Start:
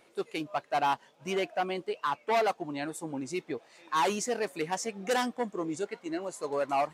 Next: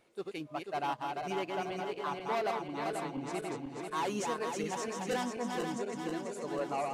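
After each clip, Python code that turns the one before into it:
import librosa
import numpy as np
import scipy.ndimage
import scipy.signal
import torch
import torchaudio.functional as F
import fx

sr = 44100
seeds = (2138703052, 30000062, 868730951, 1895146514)

y = fx.reverse_delay_fb(x, sr, ms=244, feedback_pct=75, wet_db=-3.5)
y = fx.low_shelf(y, sr, hz=170.0, db=9.0)
y = y * 10.0 ** (-8.0 / 20.0)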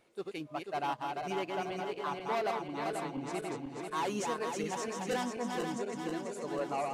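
y = x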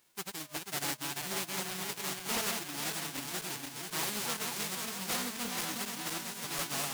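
y = fx.envelope_flatten(x, sr, power=0.1)
y = fx.doppler_dist(y, sr, depth_ms=0.71)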